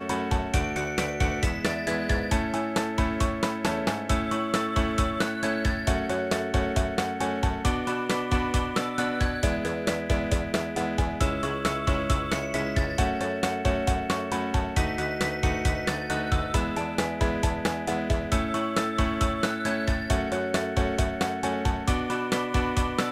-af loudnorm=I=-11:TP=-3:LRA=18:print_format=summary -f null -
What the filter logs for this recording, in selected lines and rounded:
Input Integrated:    -27.0 LUFS
Input True Peak:     -10.8 dBTP
Input LRA:             0.5 LU
Input Threshold:     -37.0 LUFS